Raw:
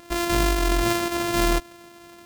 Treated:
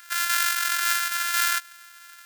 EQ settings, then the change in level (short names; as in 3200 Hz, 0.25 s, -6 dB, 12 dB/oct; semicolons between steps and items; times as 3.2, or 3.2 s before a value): resonant high-pass 1500 Hz, resonance Q 8.3; tilt +2.5 dB/oct; high shelf 2400 Hz +8 dB; -10.0 dB